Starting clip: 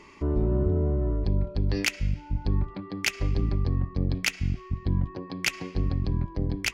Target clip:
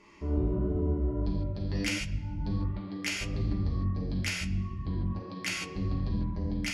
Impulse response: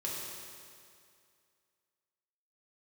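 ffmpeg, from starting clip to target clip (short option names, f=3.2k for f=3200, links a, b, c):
-filter_complex "[0:a]flanger=delay=6.1:depth=7.5:regen=53:speed=1.5:shape=triangular[a];[1:a]atrim=start_sample=2205,atrim=end_sample=3969,asetrate=24255,aresample=44100[b];[a][b]afir=irnorm=-1:irlink=0,volume=-5dB"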